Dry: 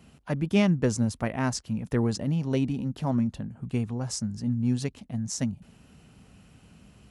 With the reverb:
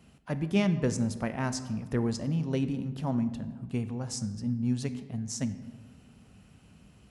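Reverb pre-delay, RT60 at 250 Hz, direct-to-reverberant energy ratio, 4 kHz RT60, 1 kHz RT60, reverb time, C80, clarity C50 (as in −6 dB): 21 ms, 1.9 s, 11.0 dB, 0.85 s, 1.4 s, 1.5 s, 14.0 dB, 12.5 dB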